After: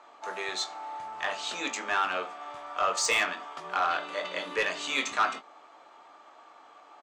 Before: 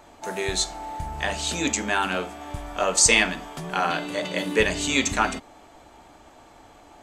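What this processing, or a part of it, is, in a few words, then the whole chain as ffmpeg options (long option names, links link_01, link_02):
intercom: -filter_complex "[0:a]highpass=490,lowpass=4800,equalizer=frequency=1200:width_type=o:width=0.34:gain=10,asoftclip=type=tanh:threshold=-12.5dB,asplit=2[link_01][link_02];[link_02]adelay=22,volume=-9.5dB[link_03];[link_01][link_03]amix=inputs=2:normalize=0,volume=-4.5dB"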